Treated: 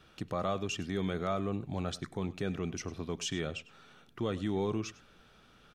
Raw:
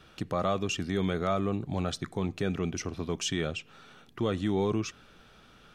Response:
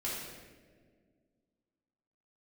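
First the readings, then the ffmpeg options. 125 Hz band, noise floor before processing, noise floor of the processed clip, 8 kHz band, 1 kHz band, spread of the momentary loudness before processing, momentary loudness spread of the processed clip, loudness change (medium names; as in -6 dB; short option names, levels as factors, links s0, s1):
-4.5 dB, -57 dBFS, -61 dBFS, -4.5 dB, -4.5 dB, 6 LU, 6 LU, -4.5 dB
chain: -af "aecho=1:1:100:0.119,volume=0.596"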